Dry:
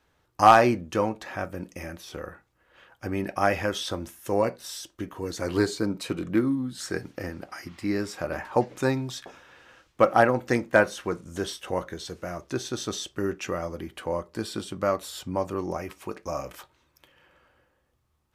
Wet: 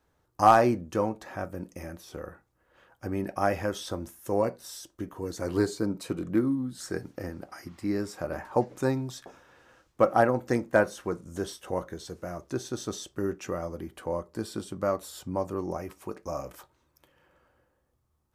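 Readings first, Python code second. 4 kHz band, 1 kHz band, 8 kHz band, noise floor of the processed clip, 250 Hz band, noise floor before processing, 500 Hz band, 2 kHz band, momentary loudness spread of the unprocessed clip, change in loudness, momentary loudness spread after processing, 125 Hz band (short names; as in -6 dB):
-7.5 dB, -3.0 dB, -4.0 dB, -73 dBFS, -1.5 dB, -70 dBFS, -2.0 dB, -6.0 dB, 16 LU, -2.5 dB, 16 LU, -1.5 dB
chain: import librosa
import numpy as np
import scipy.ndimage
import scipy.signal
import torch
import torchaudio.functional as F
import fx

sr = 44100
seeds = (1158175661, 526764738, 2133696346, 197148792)

y = fx.peak_eq(x, sr, hz=2800.0, db=-8.0, octaves=1.8)
y = y * librosa.db_to_amplitude(-1.5)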